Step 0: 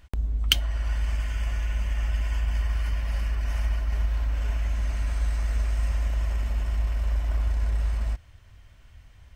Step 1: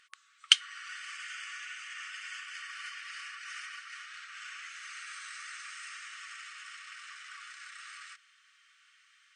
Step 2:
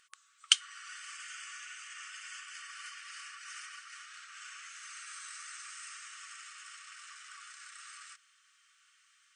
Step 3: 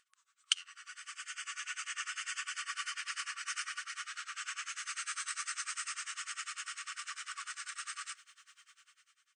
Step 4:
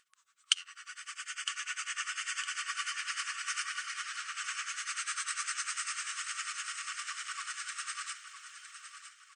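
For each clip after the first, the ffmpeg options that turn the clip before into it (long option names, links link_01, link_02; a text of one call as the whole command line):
ffmpeg -i in.wav -af "afftfilt=real='re*between(b*sr/4096,1100,9700)':imag='im*between(b*sr/4096,1100,9700)':win_size=4096:overlap=0.75,volume=1dB" out.wav
ffmpeg -i in.wav -af "equalizer=frequency=2000:width_type=o:width=1:gain=-6,equalizer=frequency=4000:width_type=o:width=1:gain=-3,equalizer=frequency=8000:width_type=o:width=1:gain=5" out.wav
ffmpeg -i in.wav -af "flanger=delay=4.1:depth=7.5:regen=-85:speed=0.72:shape=sinusoidal,dynaudnorm=framelen=230:gausssize=7:maxgain=15dB,tremolo=f=10:d=0.93" out.wav
ffmpeg -i in.wav -af "aecho=1:1:959|1918|2877|3836:0.299|0.113|0.0431|0.0164,volume=3dB" out.wav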